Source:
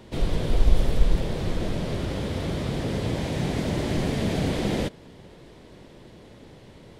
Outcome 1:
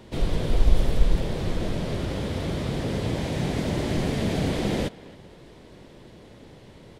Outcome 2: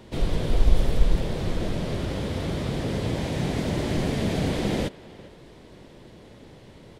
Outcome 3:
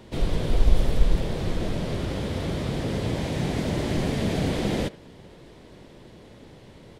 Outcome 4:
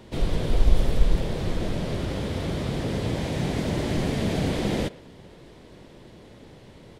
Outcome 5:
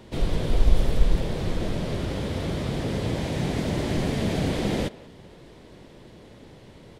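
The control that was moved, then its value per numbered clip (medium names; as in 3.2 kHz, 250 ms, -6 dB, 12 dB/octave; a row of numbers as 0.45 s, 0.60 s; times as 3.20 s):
speakerphone echo, time: 270 ms, 400 ms, 80 ms, 120 ms, 180 ms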